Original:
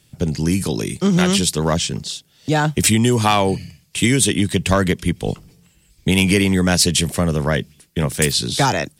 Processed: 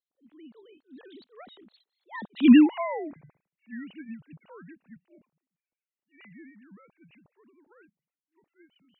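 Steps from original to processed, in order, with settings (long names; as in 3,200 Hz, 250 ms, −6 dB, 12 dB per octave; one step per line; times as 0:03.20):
three sine waves on the formant tracks
source passing by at 0:02.53, 58 m/s, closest 3.3 metres
level that may rise only so fast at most 350 dB per second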